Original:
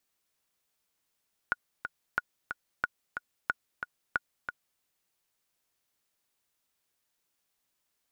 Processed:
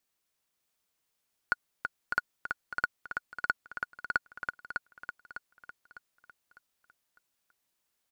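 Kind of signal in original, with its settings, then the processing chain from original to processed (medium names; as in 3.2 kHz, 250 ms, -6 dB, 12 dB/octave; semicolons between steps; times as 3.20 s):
metronome 182 bpm, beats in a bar 2, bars 5, 1.45 kHz, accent 7.5 dB -13.5 dBFS
waveshaping leveller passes 1; feedback delay 603 ms, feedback 40%, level -5.5 dB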